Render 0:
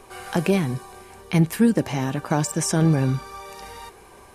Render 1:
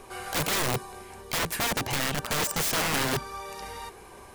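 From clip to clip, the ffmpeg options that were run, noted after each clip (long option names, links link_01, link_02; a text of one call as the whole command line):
ffmpeg -i in.wav -af "aeval=exprs='(mod(12.6*val(0)+1,2)-1)/12.6':channel_layout=same" out.wav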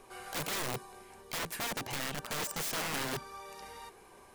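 ffmpeg -i in.wav -af "equalizer=frequency=65:width_type=o:width=1.2:gain=-8.5,volume=-8.5dB" out.wav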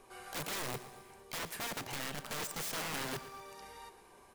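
ffmpeg -i in.wav -af "aecho=1:1:117|234|351|468|585:0.188|0.0961|0.049|0.025|0.0127,volume=-3.5dB" out.wav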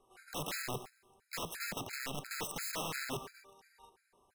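ffmpeg -i in.wav -af "agate=range=-12dB:threshold=-48dB:ratio=16:detection=peak,afftfilt=real='re*gt(sin(2*PI*2.9*pts/sr)*(1-2*mod(floor(b*sr/1024/1300),2)),0)':imag='im*gt(sin(2*PI*2.9*pts/sr)*(1-2*mod(floor(b*sr/1024/1300),2)),0)':win_size=1024:overlap=0.75,volume=2.5dB" out.wav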